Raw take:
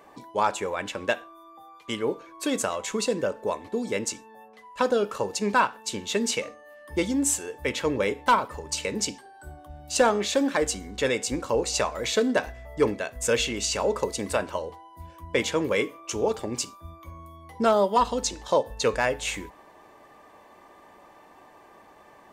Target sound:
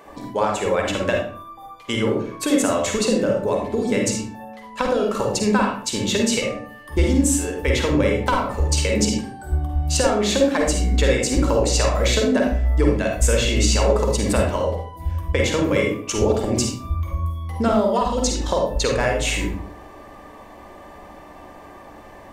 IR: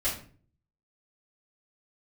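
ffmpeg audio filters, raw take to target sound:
-filter_complex "[0:a]acompressor=threshold=-26dB:ratio=6,asplit=2[link_01][link_02];[1:a]atrim=start_sample=2205,lowshelf=frequency=450:gain=9.5,adelay=43[link_03];[link_02][link_03]afir=irnorm=-1:irlink=0,volume=-9.5dB[link_04];[link_01][link_04]amix=inputs=2:normalize=0,volume=6.5dB"

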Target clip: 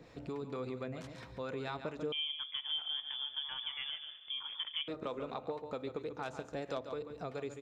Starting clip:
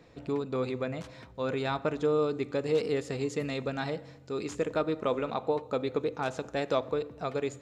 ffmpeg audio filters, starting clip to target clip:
ffmpeg -i in.wav -filter_complex "[0:a]aeval=exprs='0.2*(cos(1*acos(clip(val(0)/0.2,-1,1)))-cos(1*PI/2))+0.0316*(cos(3*acos(clip(val(0)/0.2,-1,1)))-cos(3*PI/2))+0.00891*(cos(5*acos(clip(val(0)/0.2,-1,1)))-cos(5*PI/2))':channel_layout=same,acrossover=split=660[link_01][link_02];[link_01]aeval=exprs='val(0)*(1-0.5/2+0.5/2*cos(2*PI*4.4*n/s))':channel_layout=same[link_03];[link_02]aeval=exprs='val(0)*(1-0.5/2-0.5/2*cos(2*PI*4.4*n/s))':channel_layout=same[link_04];[link_03][link_04]amix=inputs=2:normalize=0,aecho=1:1:141:0.299,acompressor=threshold=-50dB:ratio=2,asettb=1/sr,asplit=3[link_05][link_06][link_07];[link_05]atrim=end=2.124[link_08];[link_06]atrim=start=2.12:end=4.88,asetpts=PTS-STARTPTS,afade=type=in:duration=0.004:curve=qsin,afade=type=out:start_time=2.756:duration=0.004:curve=qsin,lowpass=frequency=3100:width_type=q:width=0.5098,lowpass=frequency=3100:width_type=q:width=0.6013,lowpass=frequency=3100:width_type=q:width=0.9,lowpass=frequency=3100:width_type=q:width=2.563,afreqshift=-3600[link_09];[link_07]atrim=start=4.876[link_10];[link_08][link_09]acrossfade=duration=0.004:curve1=hsin:curve2=qsin[link_11];[link_11][link_10]acrossfade=duration=0.004:curve1=qsin:curve2=hsin,volume=5dB" out.wav

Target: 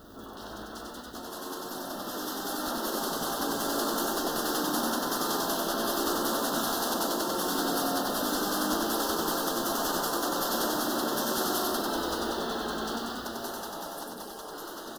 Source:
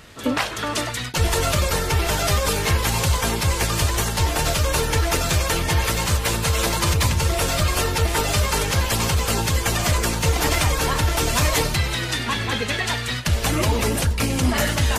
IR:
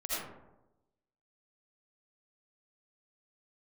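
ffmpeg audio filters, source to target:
-af "aeval=exprs='val(0)+0.5*0.0237*sgn(val(0))':channel_layout=same,afftfilt=real='re*lt(hypot(re,im),0.178)':imag='im*lt(hypot(re,im),0.178)':win_size=1024:overlap=0.75,equalizer=frequency=125:width_type=o:width=1:gain=-8,equalizer=frequency=250:width_type=o:width=1:gain=4,equalizer=frequency=500:width_type=o:width=1:gain=-10,equalizer=frequency=1000:width_type=o:width=1:gain=-9,equalizer=frequency=2000:width_type=o:width=1:gain=-9,equalizer=frequency=4000:width_type=o:width=1:gain=-7,equalizer=frequency=8000:width_type=o:width=1:gain=-12,dynaudnorm=framelen=300:gausssize=17:maxgain=11dB,asuperstop=centerf=2300:order=4:qfactor=0.98,bass=frequency=250:gain=-14,treble=frequency=4000:gain=-13,aecho=1:1:95|190|285|380|475|570|665|760:0.708|0.404|0.23|0.131|0.0747|0.0426|0.0243|0.0138"

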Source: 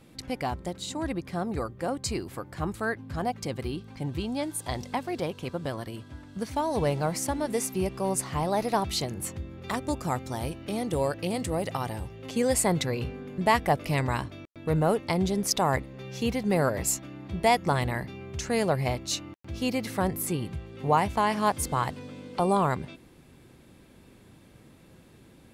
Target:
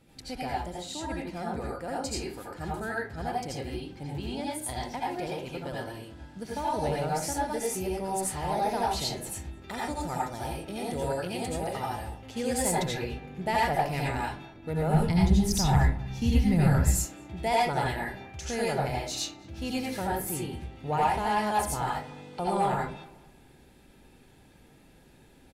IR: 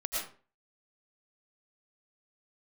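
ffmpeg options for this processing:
-filter_complex "[1:a]atrim=start_sample=2205,asetrate=57330,aresample=44100[link_01];[0:a][link_01]afir=irnorm=-1:irlink=0,asoftclip=type=tanh:threshold=-13.5dB,asuperstop=centerf=1100:order=4:qfactor=7.5,asplit=2[link_02][link_03];[link_03]adelay=216,lowpass=frequency=1800:poles=1,volume=-19dB,asplit=2[link_04][link_05];[link_05]adelay=216,lowpass=frequency=1800:poles=1,volume=0.38,asplit=2[link_06][link_07];[link_07]adelay=216,lowpass=frequency=1800:poles=1,volume=0.38[link_08];[link_02][link_04][link_06][link_08]amix=inputs=4:normalize=0,asplit=3[link_09][link_10][link_11];[link_09]afade=type=out:start_time=14.93:duration=0.02[link_12];[link_10]asubboost=boost=9.5:cutoff=150,afade=type=in:start_time=14.93:duration=0.02,afade=type=out:start_time=17.04:duration=0.02[link_13];[link_11]afade=type=in:start_time=17.04:duration=0.02[link_14];[link_12][link_13][link_14]amix=inputs=3:normalize=0,volume=-3dB"

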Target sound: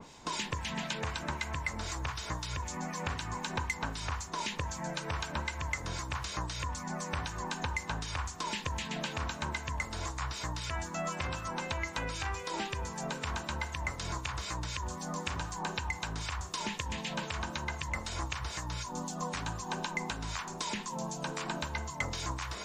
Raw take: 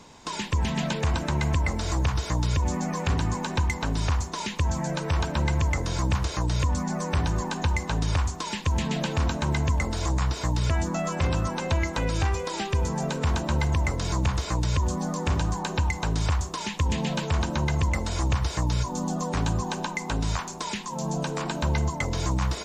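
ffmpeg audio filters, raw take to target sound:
ffmpeg -i in.wav -filter_complex "[0:a]acrossover=split=920[link_01][link_02];[link_01]acompressor=threshold=-34dB:ratio=10[link_03];[link_03][link_02]amix=inputs=2:normalize=0,acrossover=split=1800[link_04][link_05];[link_04]aeval=exprs='val(0)*(1-0.5/2+0.5/2*cos(2*PI*3.9*n/s))':channel_layout=same[link_06];[link_05]aeval=exprs='val(0)*(1-0.5/2-0.5/2*cos(2*PI*3.9*n/s))':channel_layout=same[link_07];[link_06][link_07]amix=inputs=2:normalize=0,areverse,acompressor=mode=upward:threshold=-42dB:ratio=2.5,areverse,bandreject=frequency=48.36:width_type=h:width=4,bandreject=frequency=96.72:width_type=h:width=4,bandreject=frequency=145.08:width_type=h:width=4,bandreject=frequency=193.44:width_type=h:width=4,bandreject=frequency=241.8:width_type=h:width=4,bandreject=frequency=290.16:width_type=h:width=4,bandreject=frequency=338.52:width_type=h:width=4,bandreject=frequency=386.88:width_type=h:width=4,bandreject=frequency=435.24:width_type=h:width=4,bandreject=frequency=483.6:width_type=h:width=4,bandreject=frequency=531.96:width_type=h:width=4,bandreject=frequency=580.32:width_type=h:width=4,bandreject=frequency=628.68:width_type=h:width=4,bandreject=frequency=677.04:width_type=h:width=4,bandreject=frequency=725.4:width_type=h:width=4,bandreject=frequency=773.76:width_type=h:width=4,bandreject=frequency=822.12:width_type=h:width=4,bandreject=frequency=870.48:width_type=h:width=4,bandreject=frequency=918.84:width_type=h:width=4,bandreject=frequency=967.2:width_type=h:width=4,bandreject=frequency=1015.56:width_type=h:width=4,bandreject=frequency=1063.92:width_type=h:width=4,bandreject=frequency=1112.28:width_type=h:width=4,bandreject=frequency=1160.64:width_type=h:width=4,bandreject=frequency=1209:width_type=h:width=4,bandreject=frequency=1257.36:width_type=h:width=4,bandreject=frequency=1305.72:width_type=h:width=4,bandreject=frequency=1354.08:width_type=h:width=4,bandreject=frequency=1402.44:width_type=h:width=4,bandreject=frequency=1450.8:width_type=h:width=4,bandreject=frequency=1499.16:width_type=h:width=4,bandreject=frequency=1547.52:width_type=h:width=4,bandreject=frequency=1595.88:width_type=h:width=4,bandreject=frequency=1644.24:width_type=h:width=4,bandreject=frequency=1692.6:width_type=h:width=4,bandreject=frequency=1740.96:width_type=h:width=4,bandreject=frequency=1789.32:width_type=h:width=4,bandreject=frequency=1837.68:width_type=h:width=4,bandreject=frequency=1886.04:width_type=h:width=4,adynamicequalizer=threshold=0.00501:dfrequency=2800:dqfactor=0.7:tfrequency=2800:tqfactor=0.7:attack=5:release=100:ratio=0.375:range=2:mode=cutabove:tftype=highshelf" out.wav

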